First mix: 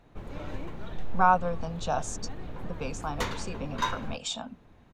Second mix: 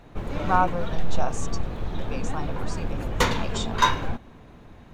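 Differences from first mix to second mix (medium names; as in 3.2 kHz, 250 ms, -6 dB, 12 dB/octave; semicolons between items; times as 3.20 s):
speech: entry -0.70 s; background +9.5 dB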